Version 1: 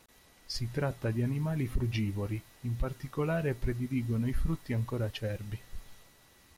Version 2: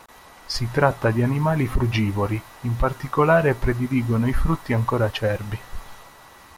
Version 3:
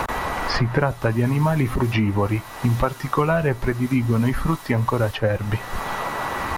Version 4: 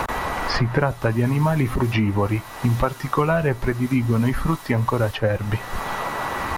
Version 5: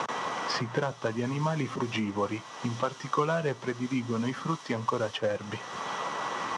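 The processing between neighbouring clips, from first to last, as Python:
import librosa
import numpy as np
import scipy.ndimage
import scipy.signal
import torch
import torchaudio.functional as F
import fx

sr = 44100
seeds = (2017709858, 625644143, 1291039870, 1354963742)

y1 = fx.peak_eq(x, sr, hz=1000.0, db=13.0, octaves=1.6)
y1 = y1 * librosa.db_to_amplitude(9.0)
y2 = fx.band_squash(y1, sr, depth_pct=100)
y3 = y2
y4 = fx.cvsd(y3, sr, bps=64000)
y4 = fx.cabinet(y4, sr, low_hz=140.0, low_slope=24, high_hz=7800.0, hz=(480.0, 1100.0, 3200.0, 5800.0), db=(4, 5, 8, 9))
y4 = y4 * librosa.db_to_amplitude(-9.0)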